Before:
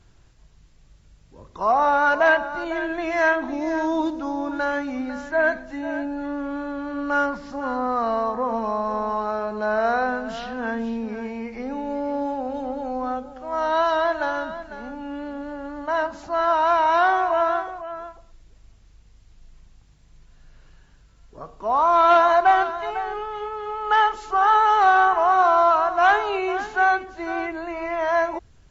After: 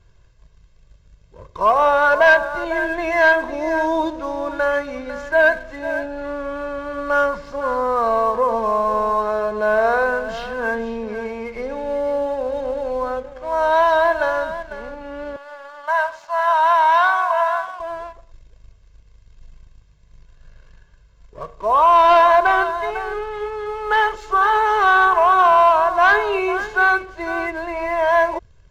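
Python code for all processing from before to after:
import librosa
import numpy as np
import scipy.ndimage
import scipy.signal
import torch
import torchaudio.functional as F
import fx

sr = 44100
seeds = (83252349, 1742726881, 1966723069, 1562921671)

y = fx.chain(x, sr, fx.highpass(hz=730.0, slope=24),
    fx.echo_single(ms=96, db=-18.0), at=(15.36, 17.8))
y = fx.high_shelf(y, sr, hz=5200.0, db=-7.0)
y = y + 0.67 * np.pad(y, (int(1.9 * sr / 1000.0), 0))[:len(y)]
y = fx.leveller(y, sr, passes=1)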